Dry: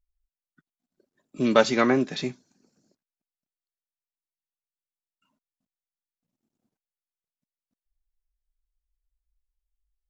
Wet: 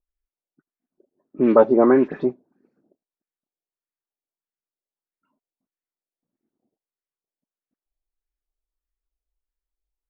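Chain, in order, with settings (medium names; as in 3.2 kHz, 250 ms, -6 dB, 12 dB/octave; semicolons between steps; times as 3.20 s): peaking EQ 360 Hz +12.5 dB 1.5 oct; 1.38–2.30 s: waveshaping leveller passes 1; LFO low-pass sine 1.6 Hz 650–2000 Hz; phase dispersion highs, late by 59 ms, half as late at 2.8 kHz; trim -7 dB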